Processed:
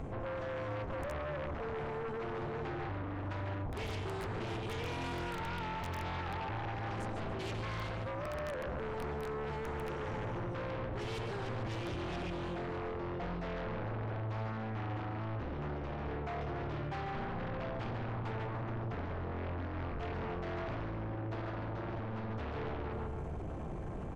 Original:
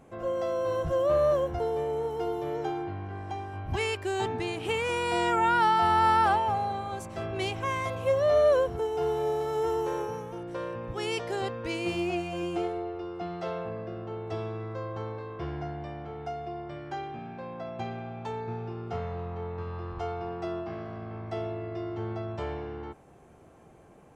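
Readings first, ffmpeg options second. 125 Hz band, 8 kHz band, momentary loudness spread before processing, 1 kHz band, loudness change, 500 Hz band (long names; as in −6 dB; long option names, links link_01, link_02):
−1.0 dB, −11.5 dB, 15 LU, −12.0 dB, −9.0 dB, −11.5 dB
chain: -filter_complex "[0:a]aecho=1:1:145|290|435|580:0.422|0.16|0.0609|0.0231,acrossover=split=360[link_01][link_02];[link_02]acompressor=threshold=-28dB:ratio=8[link_03];[link_01][link_03]amix=inputs=2:normalize=0,tremolo=f=220:d=0.788,bandreject=frequency=120.4:width_type=h:width=4,bandreject=frequency=240.8:width_type=h:width=4,bandreject=frequency=361.2:width_type=h:width=4,bandreject=frequency=481.6:width_type=h:width=4,aeval=exprs='(mod(11.9*val(0)+1,2)-1)/11.9':channel_layout=same,areverse,acompressor=threshold=-42dB:ratio=8,areverse,aemphasis=mode=reproduction:type=bsi,aresample=22050,aresample=44100,asplit=2[link_04][link_05];[link_05]aeval=exprs='0.0447*sin(PI/2*6.31*val(0)/0.0447)':channel_layout=same,volume=-6dB[link_06];[link_04][link_06]amix=inputs=2:normalize=0,alimiter=level_in=12dB:limit=-24dB:level=0:latency=1:release=16,volume=-12dB,volume=1dB"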